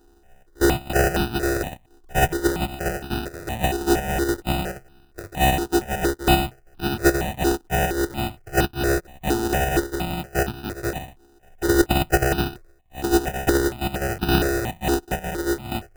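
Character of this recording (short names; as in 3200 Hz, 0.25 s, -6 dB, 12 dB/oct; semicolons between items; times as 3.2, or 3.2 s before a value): a buzz of ramps at a fixed pitch in blocks of 128 samples; chopped level 2.1 Hz, depth 60%, duty 90%; aliases and images of a low sample rate 1100 Hz, jitter 0%; notches that jump at a steady rate 4.3 Hz 590–2000 Hz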